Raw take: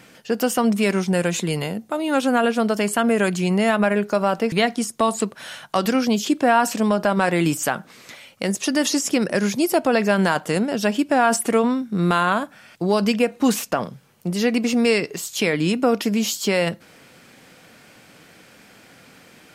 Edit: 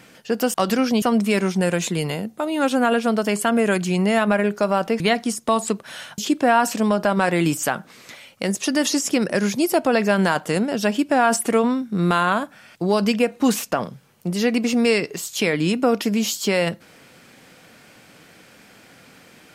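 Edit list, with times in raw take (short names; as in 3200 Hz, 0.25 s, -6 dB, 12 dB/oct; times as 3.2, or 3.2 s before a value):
5.7–6.18 move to 0.54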